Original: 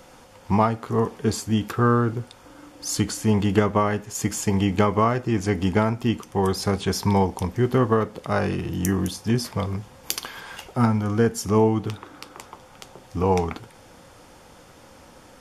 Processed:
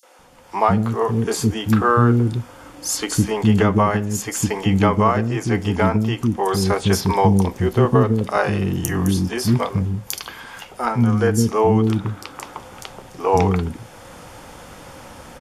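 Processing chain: 7.24–8.07 dynamic EQ 1500 Hz, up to -5 dB, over -37 dBFS, Q 0.9; AGC gain up to 10 dB; three bands offset in time highs, mids, lows 30/190 ms, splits 350/5000 Hz

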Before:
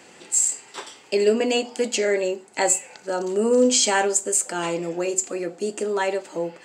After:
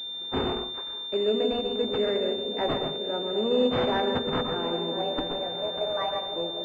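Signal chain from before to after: 4.92–6.22 frequency shift +210 Hz; repeats that get brighter 0.251 s, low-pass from 200 Hz, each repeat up 1 oct, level -3 dB; plate-style reverb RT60 0.52 s, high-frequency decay 0.65×, pre-delay 0.11 s, DRR 5.5 dB; pulse-width modulation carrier 3600 Hz; gain -6.5 dB

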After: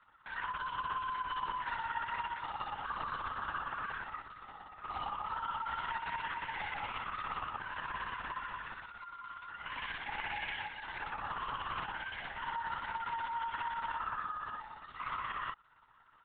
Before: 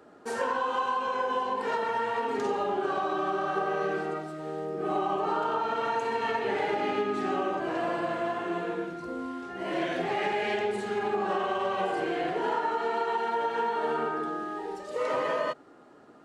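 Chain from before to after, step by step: steep high-pass 870 Hz 48 dB/oct; limiter -26 dBFS, peak gain reduction 6.5 dB; AM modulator 33 Hz, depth 85%; LPC vocoder at 8 kHz whisper

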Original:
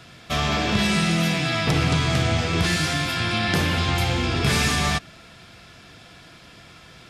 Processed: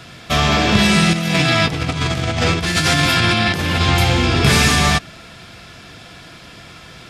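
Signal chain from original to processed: 1.13–3.81 negative-ratio compressor -24 dBFS, ratio -0.5; gain +7.5 dB

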